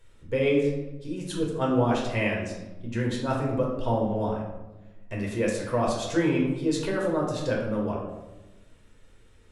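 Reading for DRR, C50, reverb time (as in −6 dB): −3.0 dB, 3.0 dB, 1.1 s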